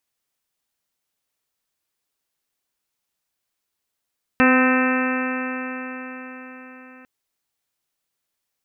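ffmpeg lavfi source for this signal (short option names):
-f lavfi -i "aevalsrc='0.188*pow(10,-3*t/4.98)*sin(2*PI*255.09*t)+0.0944*pow(10,-3*t/4.98)*sin(2*PI*510.75*t)+0.0562*pow(10,-3*t/4.98)*sin(2*PI*767.54*t)+0.0562*pow(10,-3*t/4.98)*sin(2*PI*1026.02*t)+0.0841*pow(10,-3*t/4.98)*sin(2*PI*1286.74*t)+0.0794*pow(10,-3*t/4.98)*sin(2*PI*1550.25*t)+0.1*pow(10,-3*t/4.98)*sin(2*PI*1817.07*t)+0.0316*pow(10,-3*t/4.98)*sin(2*PI*2087.75*t)+0.0473*pow(10,-3*t/4.98)*sin(2*PI*2362.78*t)+0.075*pow(10,-3*t/4.98)*sin(2*PI*2642.67*t)':d=2.65:s=44100"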